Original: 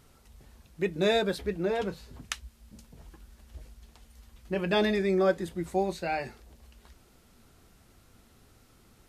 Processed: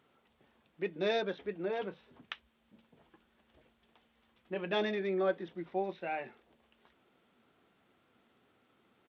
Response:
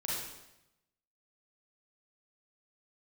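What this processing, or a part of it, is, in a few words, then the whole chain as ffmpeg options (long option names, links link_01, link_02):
Bluetooth headset: -af "highpass=230,aresample=8000,aresample=44100,volume=-6dB" -ar 32000 -c:a sbc -b:a 64k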